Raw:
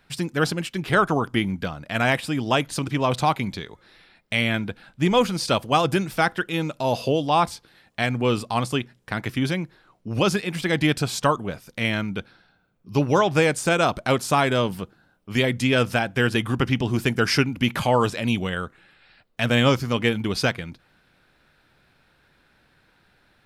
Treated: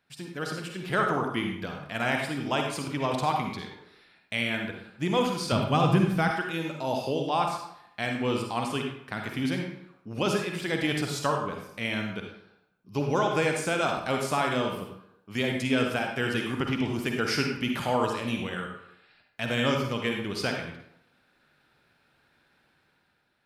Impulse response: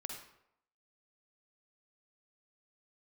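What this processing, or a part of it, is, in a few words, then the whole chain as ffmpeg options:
far laptop microphone: -filter_complex "[1:a]atrim=start_sample=2205[link_01];[0:a][link_01]afir=irnorm=-1:irlink=0,highpass=frequency=120:poles=1,dynaudnorm=framelen=120:gausssize=11:maxgain=6.5dB,asettb=1/sr,asplit=3[link_02][link_03][link_04];[link_02]atrim=end=5.524[link_05];[link_03]atrim=start=5.52:end=6.31,asetpts=PTS-STARTPTS,afade=type=in:duration=0.004:curve=qsin,afade=type=out:start_time=0.786:duration=0.004:curve=qsin,bass=frequency=250:gain=13,treble=frequency=4000:gain=-4[link_06];[link_04]atrim=start=6.306[link_07];[link_05][link_06]acrossfade=duration=0.004:curve1=hsin:curve2=qsin[link_08];[link_08][link_07]acrossfade=duration=0.004:curve1=qsin:curve2=hsin,volume=-9dB"

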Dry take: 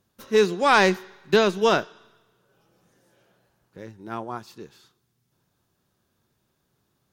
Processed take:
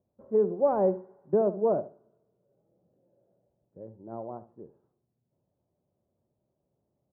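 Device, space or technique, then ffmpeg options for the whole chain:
under water: -filter_complex "[0:a]deesser=0.55,highpass=50,asettb=1/sr,asplit=3[link_01][link_02][link_03];[link_01]atrim=end=1.724[link_04];[link_02]atrim=start=1.72:end=3.81,asetpts=PTS-STARTPTS,afade=type=in:duration=0.004:curve=qsin,afade=type=out:start_time=2.086:duration=0.004:curve=qsin,equalizer=frequency=1000:width_type=o:width=1.4:gain=-6.5[link_05];[link_03]atrim=start=3.806[link_06];[link_04][link_05]acrossfade=duration=0.004:curve1=hsin:curve2=qsin[link_07];[link_07][link_06]acrossfade=duration=0.004:curve1=qsin:curve2=hsin,lowpass=frequency=800:width=0.5412,lowpass=frequency=800:width=1.3066,equalizer=frequency=590:width_type=o:width=0.38:gain=9,asplit=2[link_08][link_09];[link_09]adelay=71,lowpass=frequency=1800:poles=1,volume=-14dB,asplit=2[link_10][link_11];[link_11]adelay=71,lowpass=frequency=1800:poles=1,volume=0.23,asplit=2[link_12][link_13];[link_13]adelay=71,lowpass=frequency=1800:poles=1,volume=0.23[link_14];[link_08][link_10][link_12][link_14]amix=inputs=4:normalize=0,volume=-6.5dB"

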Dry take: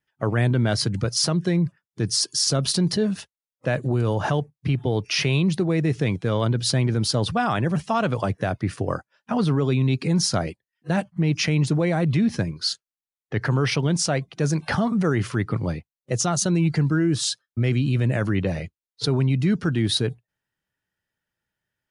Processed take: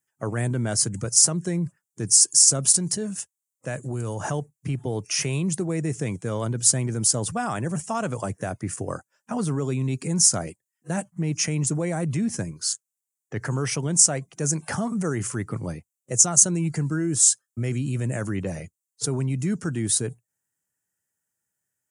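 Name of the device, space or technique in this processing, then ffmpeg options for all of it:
budget condenser microphone: -filter_complex "[0:a]asettb=1/sr,asplit=3[link_01][link_02][link_03];[link_01]atrim=end=2.744[link_04];[link_02]atrim=start=2.74:end=4.2,asetpts=PTS-STARTPTS,afade=type=in:duration=0.004:curve=qsin,afade=type=out:start_time=1.456:duration=0.004:curve=qsin,equalizer=frequency=400:width=0.33:gain=-3.5[link_05];[link_03]atrim=start=4.196[link_06];[link_04][link_05]acrossfade=duration=0.004:curve1=hsin:curve2=qsin[link_07];[link_07][link_06]acrossfade=duration=0.004:curve1=qsin:curve2=hsin,highpass=83,highshelf=frequency=5500:width_type=q:width=3:gain=12,volume=-4.5dB"

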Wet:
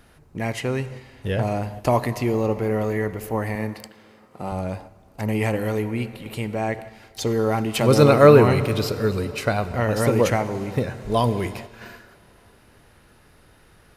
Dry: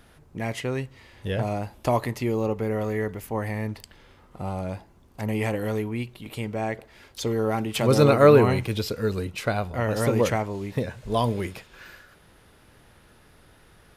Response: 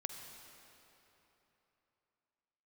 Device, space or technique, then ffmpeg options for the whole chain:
keyed gated reverb: -filter_complex "[0:a]asettb=1/sr,asplit=3[link_01][link_02][link_03];[link_01]atrim=end=3.554[link_04];[link_02]atrim=start=3.55:end=4.52,asetpts=PTS-STARTPTS,afade=type=in:duration=0.004:curve=qsin,afade=type=out:start_time=0.966:duration=0.004:curve=qsin,highpass=170[link_05];[link_03]atrim=start=4.516[link_06];[link_04][link_05]acrossfade=duration=0.004:curve1=hsin:curve2=qsin[link_07];[link_07][link_06]acrossfade=duration=0.004:curve1=qsin:curve2=hsin,asplit=3[link_08][link_09][link_10];[1:a]atrim=start_sample=2205[link_11];[link_09][link_11]afir=irnorm=-1:irlink=0[link_12];[link_10]apad=whole_len=615858[link_13];[link_12][link_13]sidechaingate=range=-8dB:threshold=-45dB:ratio=16:detection=peak,volume=-1.5dB[link_14];[link_08][link_14]amix=inputs=2:normalize=0,bandreject=frequency=3400:width=16,volume=-1dB"

